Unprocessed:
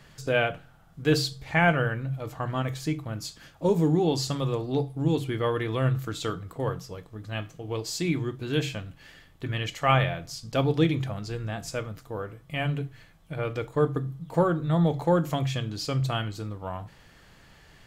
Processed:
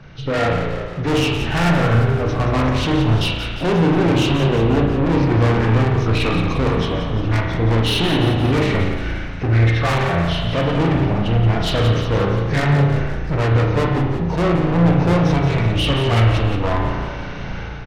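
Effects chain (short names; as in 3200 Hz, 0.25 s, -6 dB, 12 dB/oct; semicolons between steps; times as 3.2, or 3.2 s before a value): nonlinear frequency compression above 1100 Hz 1.5:1; low shelf 440 Hz +6 dB; AGC gain up to 13.5 dB; soft clip -24 dBFS, distortion -4 dB; on a send: frequency-shifting echo 0.175 s, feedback 60%, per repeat -39 Hz, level -9 dB; on the sum: spring tank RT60 1.2 s, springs 35 ms, chirp 25 ms, DRR 1 dB; gain +6.5 dB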